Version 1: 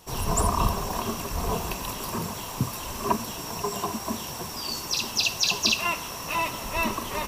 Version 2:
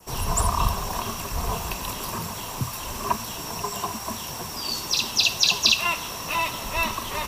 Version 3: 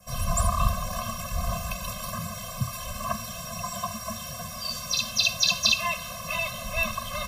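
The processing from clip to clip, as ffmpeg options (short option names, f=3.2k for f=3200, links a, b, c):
-filter_complex "[0:a]adynamicequalizer=threshold=0.01:dfrequency=3700:dqfactor=3:tfrequency=3700:tqfactor=3:attack=5:release=100:ratio=0.375:range=2.5:mode=boostabove:tftype=bell,acrossover=split=150|660|3600[a][b][c][d];[b]acompressor=threshold=-40dB:ratio=6[e];[a][e][c][d]amix=inputs=4:normalize=0,volume=2dB"
-af "afftfilt=real='re*eq(mod(floor(b*sr/1024/250),2),0)':imag='im*eq(mod(floor(b*sr/1024/250),2),0)':win_size=1024:overlap=0.75"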